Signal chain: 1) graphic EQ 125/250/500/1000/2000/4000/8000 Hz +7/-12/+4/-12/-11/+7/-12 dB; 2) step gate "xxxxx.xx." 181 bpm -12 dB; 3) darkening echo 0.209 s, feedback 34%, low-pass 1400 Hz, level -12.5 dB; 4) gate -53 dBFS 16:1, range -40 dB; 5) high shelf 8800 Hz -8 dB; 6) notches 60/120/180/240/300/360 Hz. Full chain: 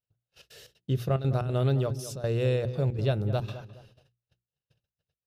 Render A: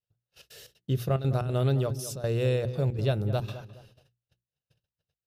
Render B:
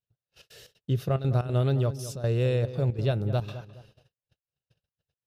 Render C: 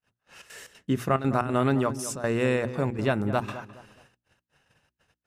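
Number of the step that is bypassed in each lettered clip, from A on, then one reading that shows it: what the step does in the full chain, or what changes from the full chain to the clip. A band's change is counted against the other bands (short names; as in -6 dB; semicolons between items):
5, 8 kHz band +3.5 dB; 6, 125 Hz band +1.5 dB; 1, momentary loudness spread change +10 LU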